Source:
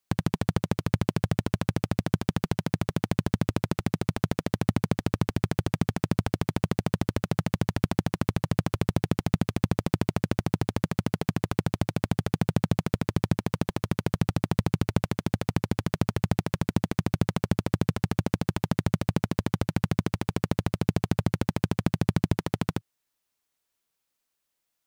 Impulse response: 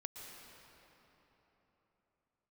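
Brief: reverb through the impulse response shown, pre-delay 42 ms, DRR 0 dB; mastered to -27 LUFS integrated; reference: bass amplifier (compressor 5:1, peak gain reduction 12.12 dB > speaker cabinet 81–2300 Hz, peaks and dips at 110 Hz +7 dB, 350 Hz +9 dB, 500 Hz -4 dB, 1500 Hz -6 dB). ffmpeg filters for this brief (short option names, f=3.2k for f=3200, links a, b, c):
-filter_complex "[0:a]asplit=2[a][b];[1:a]atrim=start_sample=2205,adelay=42[c];[b][c]afir=irnorm=-1:irlink=0,volume=2.5dB[d];[a][d]amix=inputs=2:normalize=0,acompressor=threshold=-28dB:ratio=5,highpass=f=81:w=0.5412,highpass=f=81:w=1.3066,equalizer=f=110:t=q:w=4:g=7,equalizer=f=350:t=q:w=4:g=9,equalizer=f=500:t=q:w=4:g=-4,equalizer=f=1.5k:t=q:w=4:g=-6,lowpass=f=2.3k:w=0.5412,lowpass=f=2.3k:w=1.3066,volume=4.5dB"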